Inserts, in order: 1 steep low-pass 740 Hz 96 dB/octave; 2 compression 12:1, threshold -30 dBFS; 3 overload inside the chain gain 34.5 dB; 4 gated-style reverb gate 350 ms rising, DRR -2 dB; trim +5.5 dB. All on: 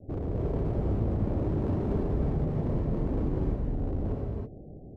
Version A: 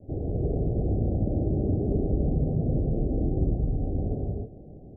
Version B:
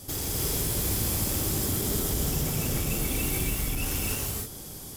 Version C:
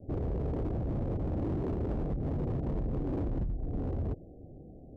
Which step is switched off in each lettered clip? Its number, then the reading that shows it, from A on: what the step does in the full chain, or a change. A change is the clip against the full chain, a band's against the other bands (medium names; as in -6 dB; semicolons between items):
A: 3, distortion -10 dB; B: 1, 2 kHz band +19.0 dB; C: 4, crest factor change -8.5 dB